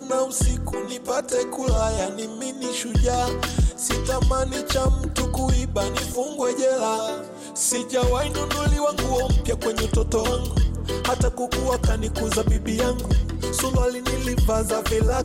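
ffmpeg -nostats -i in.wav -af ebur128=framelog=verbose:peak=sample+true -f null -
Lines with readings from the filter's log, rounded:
Integrated loudness:
  I:         -23.5 LUFS
  Threshold: -33.5 LUFS
Loudness range:
  LRA:         1.3 LU
  Threshold: -43.5 LUFS
  LRA low:   -24.2 LUFS
  LRA high:  -22.9 LUFS
Sample peak:
  Peak:      -12.6 dBFS
True peak:
  Peak:      -11.4 dBFS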